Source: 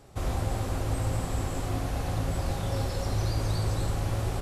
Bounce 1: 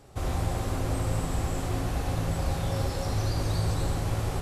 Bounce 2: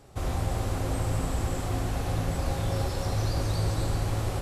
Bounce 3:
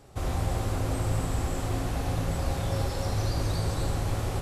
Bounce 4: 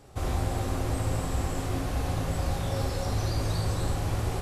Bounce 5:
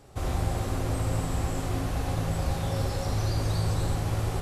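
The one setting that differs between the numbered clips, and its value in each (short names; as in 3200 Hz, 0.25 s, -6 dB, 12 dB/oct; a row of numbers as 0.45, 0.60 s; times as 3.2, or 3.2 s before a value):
non-linear reverb, gate: 210, 530, 320, 80, 140 ms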